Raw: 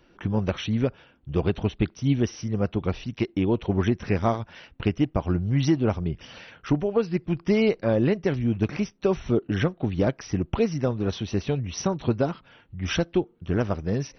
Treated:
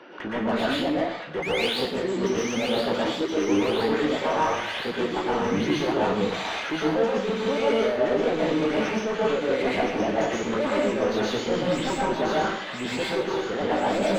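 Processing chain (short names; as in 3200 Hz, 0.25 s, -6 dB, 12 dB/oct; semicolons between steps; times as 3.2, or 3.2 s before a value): repeated pitch sweeps +5.5 st, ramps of 1.082 s; HPF 260 Hz 12 dB/oct; high shelf 4900 Hz -7 dB; reverse; compressor, threshold -33 dBFS, peak gain reduction 14.5 dB; reverse; painted sound rise, 1.42–1.68, 2000–5000 Hz -38 dBFS; overdrive pedal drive 27 dB, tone 1100 Hz, clips at -18.5 dBFS; on a send: thin delay 1.021 s, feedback 70%, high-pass 1500 Hz, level -4.5 dB; on the sum: plate-style reverb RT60 0.6 s, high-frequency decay 0.95×, pre-delay 0.105 s, DRR -5 dB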